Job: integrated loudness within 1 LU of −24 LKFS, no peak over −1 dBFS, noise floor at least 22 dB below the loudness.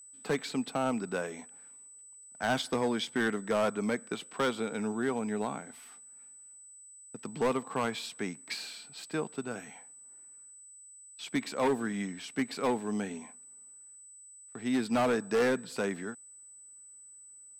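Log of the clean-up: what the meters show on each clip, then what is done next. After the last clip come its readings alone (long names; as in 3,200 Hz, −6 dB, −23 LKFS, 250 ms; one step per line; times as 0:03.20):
share of clipped samples 1.3%; peaks flattened at −23.0 dBFS; interfering tone 8,000 Hz; level of the tone −50 dBFS; integrated loudness −33.0 LKFS; sample peak −23.0 dBFS; target loudness −24.0 LKFS
→ clipped peaks rebuilt −23 dBFS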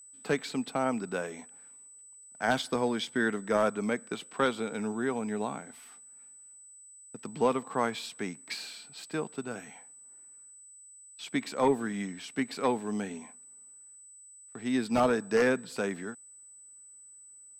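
share of clipped samples 0.0%; interfering tone 8,000 Hz; level of the tone −50 dBFS
→ notch filter 8,000 Hz, Q 30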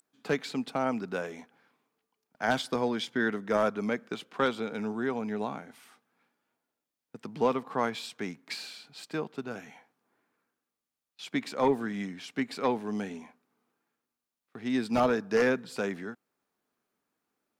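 interfering tone none found; integrated loudness −31.5 LKFS; sample peak −14.0 dBFS; target loudness −24.0 LKFS
→ level +7.5 dB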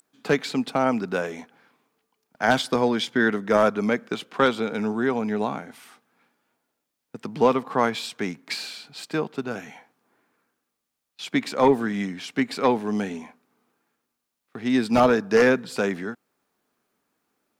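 integrated loudness −24.0 LKFS; sample peak −6.5 dBFS; background noise floor −81 dBFS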